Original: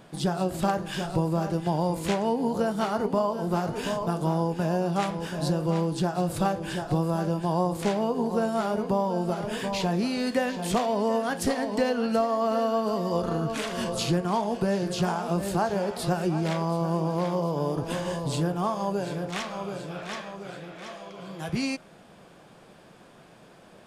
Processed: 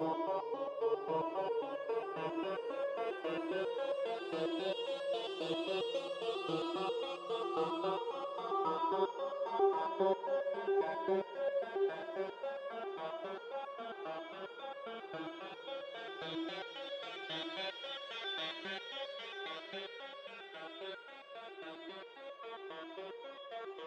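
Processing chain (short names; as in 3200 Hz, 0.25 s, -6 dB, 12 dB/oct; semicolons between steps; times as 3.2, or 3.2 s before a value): in parallel at +1 dB: limiter -21.5 dBFS, peak gain reduction 9.5 dB; on the sum: wah 2.2 Hz 340–3600 Hz, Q 12; Paulstretch 6.7×, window 1.00 s, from 17.45; stepped resonator 7.4 Hz 160–560 Hz; gain +14.5 dB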